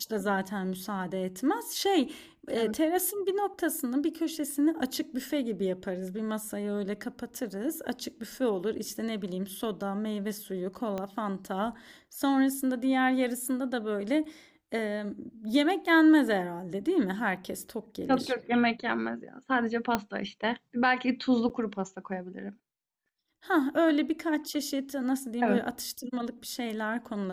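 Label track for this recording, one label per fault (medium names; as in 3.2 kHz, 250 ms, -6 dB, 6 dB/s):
10.980000	10.980000	pop -21 dBFS
19.950000	19.950000	pop -11 dBFS
21.490000	21.500000	dropout 8.5 ms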